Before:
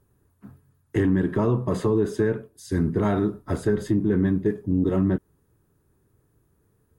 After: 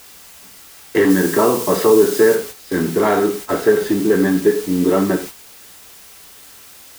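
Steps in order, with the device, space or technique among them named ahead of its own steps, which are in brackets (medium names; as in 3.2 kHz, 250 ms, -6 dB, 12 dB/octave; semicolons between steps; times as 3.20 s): dictaphone (band-pass 380–3800 Hz; level rider gain up to 14 dB; wow and flutter; white noise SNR 16 dB); 1.10–2.35 s: tone controls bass +1 dB, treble +7 dB; gated-style reverb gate 140 ms falling, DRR 4.5 dB; gate -28 dBFS, range -8 dB; trim -1 dB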